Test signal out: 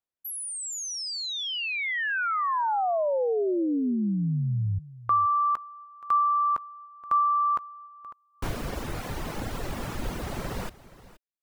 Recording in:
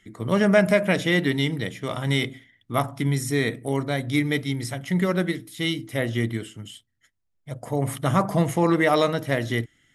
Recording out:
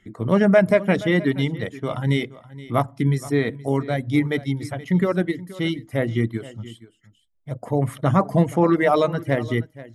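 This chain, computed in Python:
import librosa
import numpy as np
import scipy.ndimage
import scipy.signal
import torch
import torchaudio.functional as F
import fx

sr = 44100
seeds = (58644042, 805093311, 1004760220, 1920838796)

y = fx.dereverb_blind(x, sr, rt60_s=0.8)
y = fx.high_shelf(y, sr, hz=2100.0, db=-12.0)
y = y + 10.0 ** (-18.0 / 20.0) * np.pad(y, (int(474 * sr / 1000.0), 0))[:len(y)]
y = y * librosa.db_to_amplitude(4.5)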